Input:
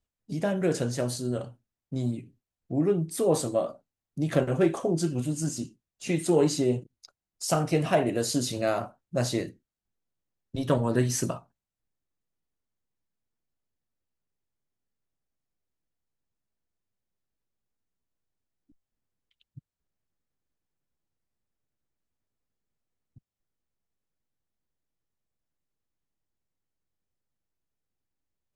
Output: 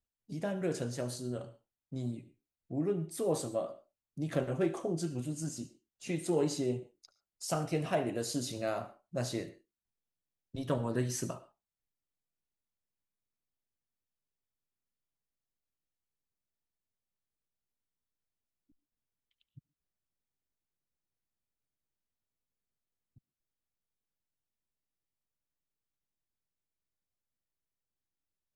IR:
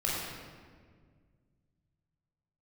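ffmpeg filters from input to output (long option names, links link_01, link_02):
-filter_complex "[0:a]asplit=2[link_01][link_02];[link_02]highpass=frequency=270:width=0.5412,highpass=frequency=270:width=1.3066[link_03];[1:a]atrim=start_sample=2205,atrim=end_sample=3528,adelay=72[link_04];[link_03][link_04]afir=irnorm=-1:irlink=0,volume=-20dB[link_05];[link_01][link_05]amix=inputs=2:normalize=0,volume=-8dB"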